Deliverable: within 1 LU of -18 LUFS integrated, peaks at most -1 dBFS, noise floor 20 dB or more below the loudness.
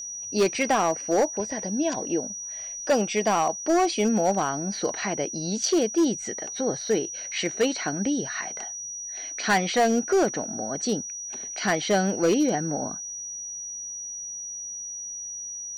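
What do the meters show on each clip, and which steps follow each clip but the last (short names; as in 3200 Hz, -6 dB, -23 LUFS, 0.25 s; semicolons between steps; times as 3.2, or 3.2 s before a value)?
clipped 1.1%; flat tops at -16.0 dBFS; steady tone 5800 Hz; tone level -33 dBFS; loudness -26.0 LUFS; peak -16.0 dBFS; loudness target -18.0 LUFS
-> clip repair -16 dBFS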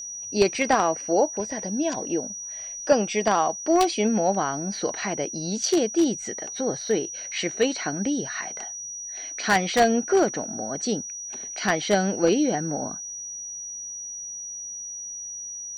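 clipped 0.0%; steady tone 5800 Hz; tone level -33 dBFS
-> notch 5800 Hz, Q 30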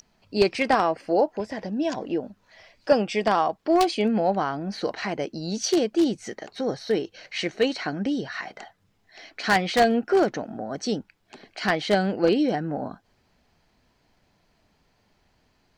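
steady tone none; loudness -25.0 LUFS; peak -6.5 dBFS; loudness target -18.0 LUFS
-> gain +7 dB; limiter -1 dBFS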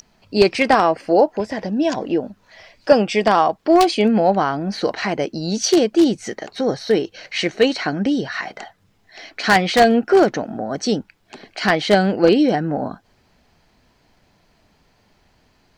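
loudness -18.0 LUFS; peak -1.0 dBFS; noise floor -60 dBFS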